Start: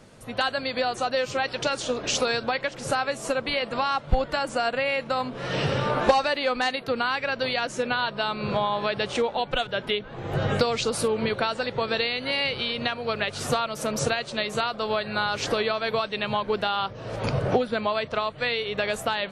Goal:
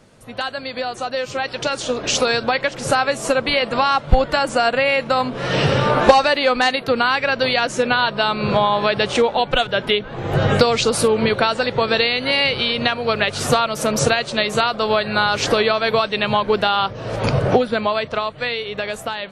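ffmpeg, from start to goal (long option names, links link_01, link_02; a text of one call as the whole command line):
ffmpeg -i in.wav -af "dynaudnorm=framelen=540:gausssize=7:maxgain=11.5dB" out.wav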